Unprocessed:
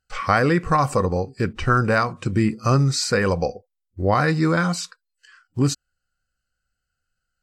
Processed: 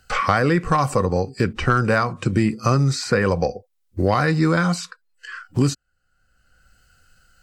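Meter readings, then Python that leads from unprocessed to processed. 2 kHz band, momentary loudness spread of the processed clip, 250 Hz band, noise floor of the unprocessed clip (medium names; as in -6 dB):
+0.5 dB, 10 LU, +1.0 dB, -80 dBFS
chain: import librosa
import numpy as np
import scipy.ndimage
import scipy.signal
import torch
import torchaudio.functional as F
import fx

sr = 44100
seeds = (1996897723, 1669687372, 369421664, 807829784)

y = 10.0 ** (-5.5 / 20.0) * np.tanh(x / 10.0 ** (-5.5 / 20.0))
y = fx.band_squash(y, sr, depth_pct=70)
y = F.gain(torch.from_numpy(y), 1.0).numpy()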